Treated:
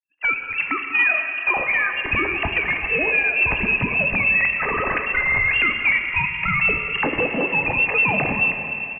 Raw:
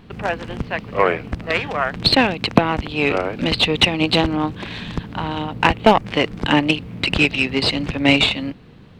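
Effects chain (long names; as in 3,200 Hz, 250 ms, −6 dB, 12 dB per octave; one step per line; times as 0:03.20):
three sine waves on the formant tracks
camcorder AGC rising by 32 dB per second
noise gate −25 dBFS, range −37 dB
noise reduction from a noise print of the clip's start 11 dB
in parallel at −3 dB: brickwall limiter −10 dBFS, peak gain reduction 8.5 dB
on the sum: downward compressor 2 to 1, threshold −17 dBFS, peak gain reduction 7 dB
gain into a clipping stage and back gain 11.5 dB
high-frequency loss of the air 230 metres
on a send: repeating echo 193 ms, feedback 58%, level −14 dB
on the sum: dense smooth reverb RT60 3.8 s, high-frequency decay 0.6×, DRR 5 dB
voice inversion scrambler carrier 3,000 Hz
level −2.5 dB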